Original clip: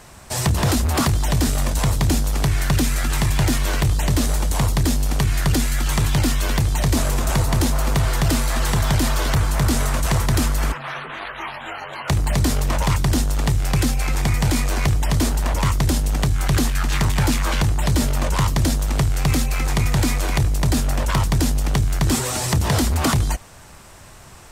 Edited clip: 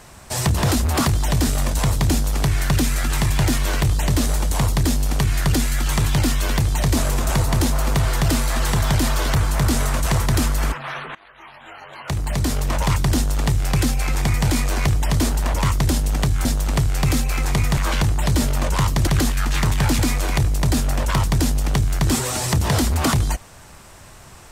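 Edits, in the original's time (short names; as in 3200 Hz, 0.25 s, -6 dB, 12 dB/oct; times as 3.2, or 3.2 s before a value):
11.15–12.91 fade in, from -21 dB
16.45–17.37 swap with 18.67–19.99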